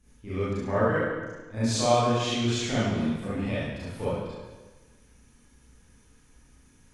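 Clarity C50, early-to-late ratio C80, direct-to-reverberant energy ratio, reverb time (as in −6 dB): −4.5 dB, 0.5 dB, −12.5 dB, 1.3 s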